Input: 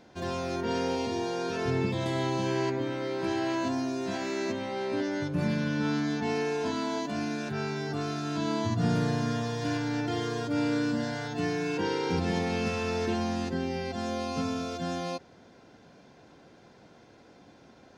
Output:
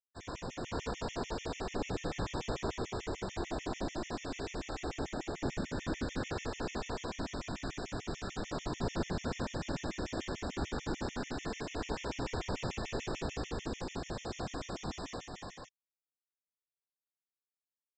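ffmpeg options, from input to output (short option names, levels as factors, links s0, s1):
-af "aeval=exprs='0.168*(cos(1*acos(clip(val(0)/0.168,-1,1)))-cos(1*PI/2))+0.0473*(cos(2*acos(clip(val(0)/0.168,-1,1)))-cos(2*PI/2))+0.015*(cos(4*acos(clip(val(0)/0.168,-1,1)))-cos(4*PI/2))':c=same,aresample=16000,acrusher=bits=4:dc=4:mix=0:aa=0.000001,aresample=44100,afftfilt=real='hypot(re,im)*cos(2*PI*random(0))':imag='hypot(re,im)*sin(2*PI*random(1))':win_size=512:overlap=0.75,aecho=1:1:50|92|353|472|505:0.178|0.596|0.708|0.168|0.668,afftfilt=real='re*gt(sin(2*PI*6.8*pts/sr)*(1-2*mod(floor(b*sr/1024/1800),2)),0)':imag='im*gt(sin(2*PI*6.8*pts/sr)*(1-2*mod(floor(b*sr/1024/1800),2)),0)':win_size=1024:overlap=0.75,volume=1.12"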